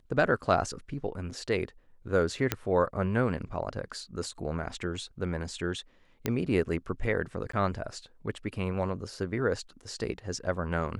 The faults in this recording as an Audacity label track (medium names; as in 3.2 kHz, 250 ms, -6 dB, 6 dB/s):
2.520000	2.520000	pop -10 dBFS
6.260000	6.260000	pop -13 dBFS
7.520000	7.530000	dropout 14 ms